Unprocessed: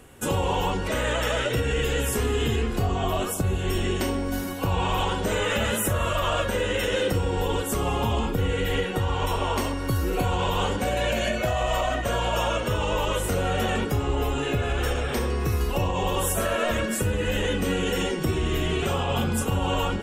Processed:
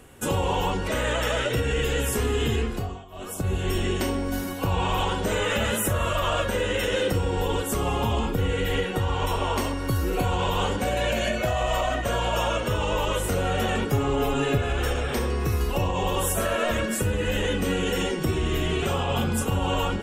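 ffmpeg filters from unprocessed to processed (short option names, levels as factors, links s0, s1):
-filter_complex "[0:a]asettb=1/sr,asplit=3[s0][s1][s2];[s0]atrim=end=13.924[s3];[s1]atrim=start=13.92:end=14.58,asetpts=PTS-STARTPTS,afade=t=in:d=0.004:c=qsin,afade=t=out:st=0.656:d=0.004:c=qsin,aecho=1:1:7.3:0.65,atrim=end_sample=29106[s4];[s2]atrim=start=14.576[s5];[s3][s4]acrossfade=d=0.004:c1=hsin:c2=qsin[s6];[s6][s5]acrossfade=d=0.004:c1=qsin:c2=hsin,asplit=3[s7][s8][s9];[s7]atrim=end=3.05,asetpts=PTS-STARTPTS,afade=t=out:st=2.6:d=0.45:silence=0.0749894[s10];[s8]atrim=start=3.05:end=3.1,asetpts=PTS-STARTPTS,volume=0.075[s11];[s9]atrim=start=3.1,asetpts=PTS-STARTPTS,afade=t=in:d=0.45:silence=0.0749894[s12];[s10][s11][s12]concat=n=3:v=0:a=1"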